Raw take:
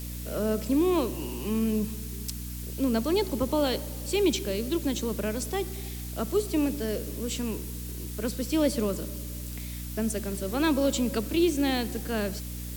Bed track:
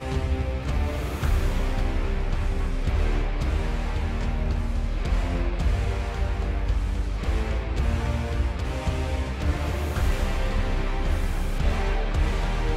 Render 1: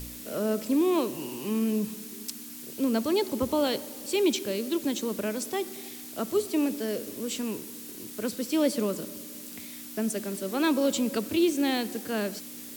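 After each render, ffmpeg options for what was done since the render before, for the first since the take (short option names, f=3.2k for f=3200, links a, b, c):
-af "bandreject=f=60:t=h:w=4,bandreject=f=120:t=h:w=4,bandreject=f=180:t=h:w=4"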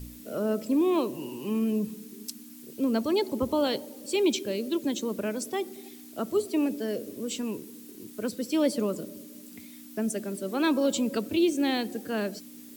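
-af "afftdn=nr=9:nf=-42"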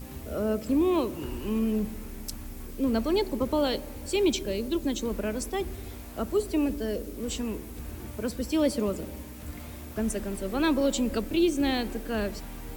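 -filter_complex "[1:a]volume=-16dB[a];[0:a][a]amix=inputs=2:normalize=0"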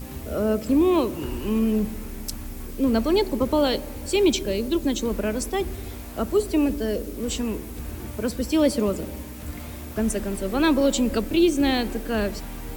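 -af "volume=5dB"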